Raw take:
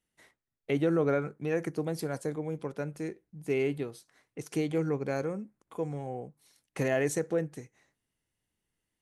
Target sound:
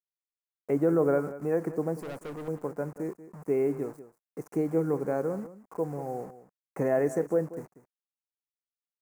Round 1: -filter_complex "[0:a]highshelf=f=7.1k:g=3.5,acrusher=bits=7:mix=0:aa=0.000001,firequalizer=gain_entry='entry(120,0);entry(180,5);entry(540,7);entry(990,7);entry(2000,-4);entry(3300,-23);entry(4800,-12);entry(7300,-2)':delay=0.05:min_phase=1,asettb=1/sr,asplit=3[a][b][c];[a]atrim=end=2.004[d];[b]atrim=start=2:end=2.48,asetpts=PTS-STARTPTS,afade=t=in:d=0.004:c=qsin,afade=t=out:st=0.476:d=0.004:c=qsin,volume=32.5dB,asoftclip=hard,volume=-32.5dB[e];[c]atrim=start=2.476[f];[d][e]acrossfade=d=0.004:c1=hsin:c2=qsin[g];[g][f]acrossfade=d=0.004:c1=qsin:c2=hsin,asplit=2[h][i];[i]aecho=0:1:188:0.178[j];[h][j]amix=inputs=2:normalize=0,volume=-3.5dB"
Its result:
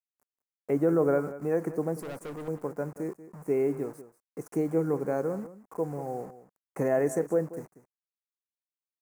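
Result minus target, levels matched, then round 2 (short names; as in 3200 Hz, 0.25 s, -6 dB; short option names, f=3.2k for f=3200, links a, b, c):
8000 Hz band +4.5 dB
-filter_complex "[0:a]highshelf=f=7.1k:g=-7,acrusher=bits=7:mix=0:aa=0.000001,firequalizer=gain_entry='entry(120,0);entry(180,5);entry(540,7);entry(990,7);entry(2000,-4);entry(3300,-23);entry(4800,-12);entry(7300,-2)':delay=0.05:min_phase=1,asettb=1/sr,asplit=3[a][b][c];[a]atrim=end=2.004[d];[b]atrim=start=2:end=2.48,asetpts=PTS-STARTPTS,afade=t=in:d=0.004:c=qsin,afade=t=out:st=0.476:d=0.004:c=qsin,volume=32.5dB,asoftclip=hard,volume=-32.5dB[e];[c]atrim=start=2.476[f];[d][e]acrossfade=d=0.004:c1=hsin:c2=qsin[g];[g][f]acrossfade=d=0.004:c1=qsin:c2=hsin,asplit=2[h][i];[i]aecho=0:1:188:0.178[j];[h][j]amix=inputs=2:normalize=0,volume=-3.5dB"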